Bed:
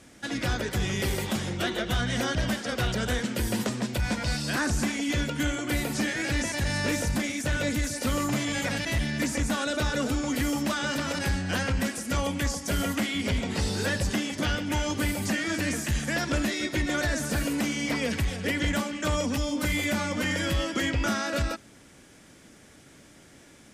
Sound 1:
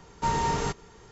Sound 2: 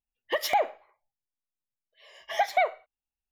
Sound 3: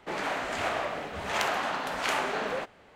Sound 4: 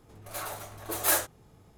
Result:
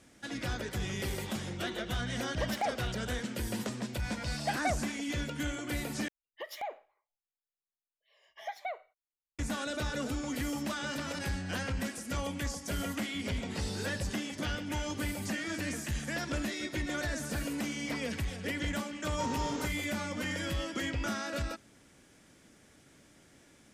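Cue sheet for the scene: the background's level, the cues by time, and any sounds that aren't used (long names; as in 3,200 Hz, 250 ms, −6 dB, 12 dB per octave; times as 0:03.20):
bed −7.5 dB
0:02.08: mix in 2 −8.5 dB + adaptive Wiener filter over 25 samples
0:06.08: overwrite with 2 −14.5 dB
0:18.96: mix in 1 −10 dB + high-pass filter 110 Hz
not used: 3, 4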